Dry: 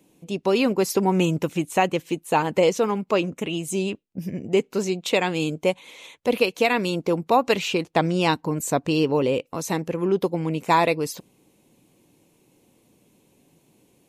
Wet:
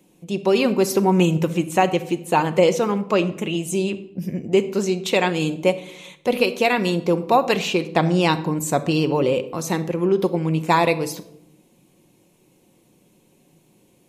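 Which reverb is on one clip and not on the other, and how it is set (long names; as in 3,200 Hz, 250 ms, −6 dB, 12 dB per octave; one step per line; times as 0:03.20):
rectangular room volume 2,000 cubic metres, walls furnished, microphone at 0.95 metres
level +1.5 dB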